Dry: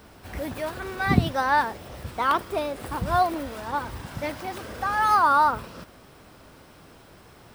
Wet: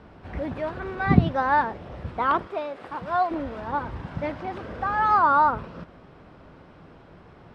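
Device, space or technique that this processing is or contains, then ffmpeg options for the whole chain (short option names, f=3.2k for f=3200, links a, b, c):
phone in a pocket: -filter_complex "[0:a]lowpass=3.7k,equalizer=f=170:t=o:w=0.21:g=5,highshelf=f=2.3k:g=-10,asettb=1/sr,asplit=3[a][b][c];[a]atrim=end=2.474[d];[b]atrim=start=2.47:end=3.31,asetpts=PTS-STARTPTS,afade=t=in:d=0.004:c=qsin,afade=t=out:st=0.836:d=0.004:c=qsin,highpass=f=690:p=1[e];[c]atrim=start=3.306[f];[d][e]acrossfade=d=0.004:c1=hsin:c2=qsin[g];[g][f]acrossfade=d=0.004:c1=qsin:c2=hsin,volume=2dB"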